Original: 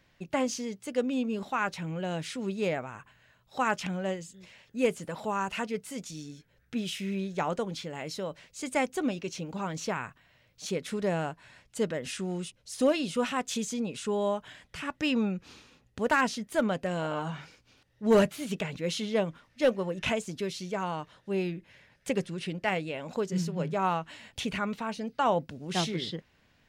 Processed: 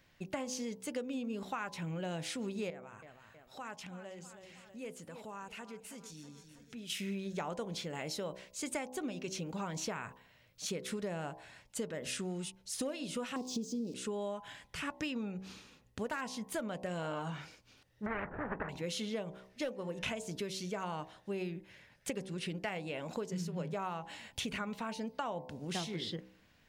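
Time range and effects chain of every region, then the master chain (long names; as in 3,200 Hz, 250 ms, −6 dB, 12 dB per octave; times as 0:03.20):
0:02.70–0:06.90: repeating echo 321 ms, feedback 38%, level −16 dB + downward compressor 2 to 1, threshold −52 dBFS
0:13.36–0:13.94: spike at every zero crossing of −25.5 dBFS + drawn EQ curve 100 Hz 0 dB, 350 Hz +12 dB, 1,000 Hz −10 dB, 1,500 Hz −27 dB, 5,000 Hz −1 dB, 12,000 Hz −28 dB + floating-point word with a short mantissa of 8 bits
0:18.06–0:18.69: running median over 41 samples + elliptic low-pass filter 1,800 Hz, stop band 70 dB + every bin compressed towards the loudest bin 4 to 1
whole clip: hum removal 63.42 Hz, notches 17; downward compressor 12 to 1, threshold −33 dBFS; high-shelf EQ 8,300 Hz +5 dB; level −1.5 dB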